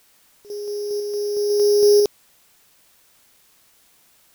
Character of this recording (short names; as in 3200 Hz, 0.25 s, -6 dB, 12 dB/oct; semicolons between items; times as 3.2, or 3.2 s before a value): a buzz of ramps at a fixed pitch in blocks of 8 samples; random-step tremolo 2 Hz, depth 80%; a quantiser's noise floor 10-bit, dither triangular